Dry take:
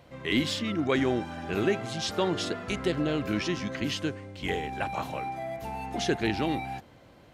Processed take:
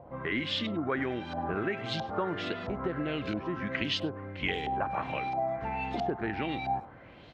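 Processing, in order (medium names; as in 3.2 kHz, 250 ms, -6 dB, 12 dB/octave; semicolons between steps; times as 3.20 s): compression 4:1, threshold -33 dBFS, peak gain reduction 10.5 dB; LFO low-pass saw up 1.5 Hz 720–4500 Hz; speakerphone echo 100 ms, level -19 dB; trim +2 dB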